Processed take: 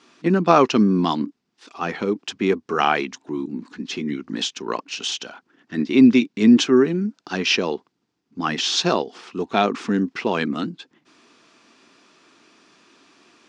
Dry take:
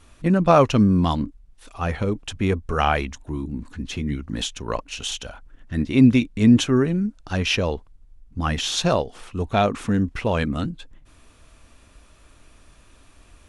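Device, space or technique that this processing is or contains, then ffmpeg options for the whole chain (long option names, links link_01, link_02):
television speaker: -af "highpass=frequency=200:width=0.5412,highpass=frequency=200:width=1.3066,equalizer=frequency=370:width_type=q:width=4:gain=5,equalizer=frequency=570:width_type=q:width=4:gain=-8,equalizer=frequency=4900:width_type=q:width=4:gain=5,lowpass=frequency=6600:width=0.5412,lowpass=frequency=6600:width=1.3066,volume=2.5dB"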